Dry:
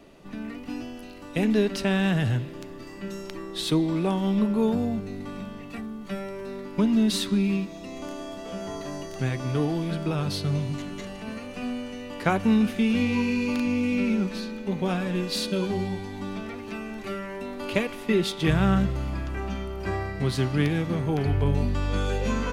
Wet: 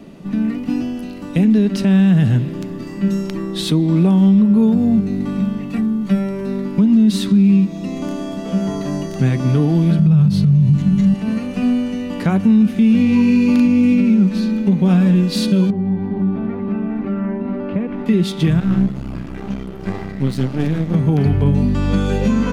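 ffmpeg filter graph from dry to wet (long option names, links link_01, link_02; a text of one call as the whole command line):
ffmpeg -i in.wav -filter_complex "[0:a]asettb=1/sr,asplit=3[link_01][link_02][link_03];[link_01]atrim=end=9.994[link_04];[link_02]atrim=start=9.99:end=11.14,asetpts=PTS-STARTPTS,afade=type=in:duration=0.004:curve=qsin,afade=type=out:start_time=1.146:duration=0.004:curve=qsin,lowshelf=frequency=230:width_type=q:width=3:gain=8,acompressor=threshold=-17dB:ratio=3:attack=3.2:release=140:knee=1:detection=peak[link_05];[link_03]atrim=start=11.136[link_06];[link_04][link_05]acrossfade=duration=0.004:curve1=hsin:curve2=qsin[link_07];[link_07][link_06]acrossfade=duration=0.004:curve1=qsin:curve2=hsin,asettb=1/sr,asplit=3[link_08][link_09][link_10];[link_08]atrim=end=15.704[link_11];[link_09]atrim=start=15.7:end=18.06,asetpts=PTS-STARTPTS,afade=type=in:duration=0.004:curve=qsin,afade=type=out:start_time=2.356:duration=0.004:curve=qsin,lowpass=1500,aecho=1:1:409|467:0.398|0.398,atrim=end_sample=104076,acompressor=threshold=-32dB:ratio=4:attack=3.2:release=140:knee=1:detection=peak[link_12];[link_10]atrim=start=18.056[link_13];[link_11][link_12]acrossfade=duration=0.004:curve1=hsin:curve2=qsin[link_14];[link_14][link_13]acrossfade=duration=0.004:curve1=qsin:curve2=hsin,asettb=1/sr,asplit=3[link_15][link_16][link_17];[link_15]atrim=end=18.604[link_18];[link_16]atrim=start=18.6:end=20.94,asetpts=PTS-STARTPTS,afade=type=in:duration=0.004:curve=qsin,afade=type=out:start_time=2.336:duration=0.004:curve=qsin,flanger=delay=2.6:depth=8.1:regen=-33:speed=2:shape=sinusoidal,aeval=exprs='max(val(0),0)':channel_layout=same[link_19];[link_17]atrim=start=20.936[link_20];[link_18][link_19]acrossfade=duration=0.004:curve1=hsin:curve2=qsin[link_21];[link_21][link_20]acrossfade=duration=0.004:curve1=qsin:curve2=hsin,equalizer=frequency=190:width_type=o:width=1.2:gain=14,alimiter=limit=-12.5dB:level=0:latency=1:release=293,volume=6dB" out.wav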